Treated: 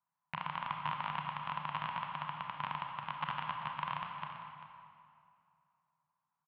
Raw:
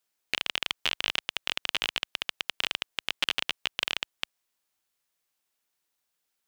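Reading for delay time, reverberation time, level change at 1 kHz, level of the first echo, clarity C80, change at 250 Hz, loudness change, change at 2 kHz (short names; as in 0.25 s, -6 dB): 0.392 s, 2.4 s, +6.0 dB, -12.5 dB, 3.5 dB, -1.0 dB, -9.5 dB, -11.5 dB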